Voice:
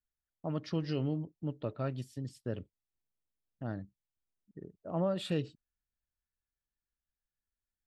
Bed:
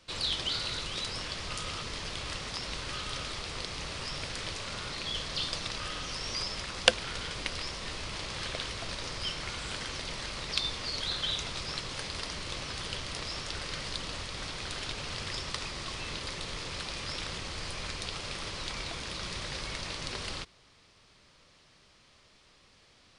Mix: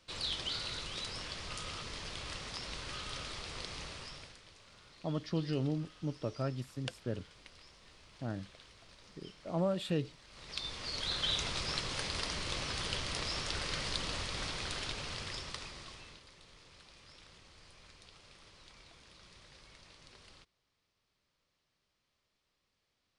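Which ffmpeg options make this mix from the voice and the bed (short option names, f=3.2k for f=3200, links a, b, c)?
-filter_complex "[0:a]adelay=4600,volume=-0.5dB[a];[1:a]volume=15.5dB,afade=t=out:st=3.77:d=0.63:silence=0.16788,afade=t=in:st=10.27:d=1.17:silence=0.0891251,afade=t=out:st=14.37:d=1.87:silence=0.0944061[b];[a][b]amix=inputs=2:normalize=0"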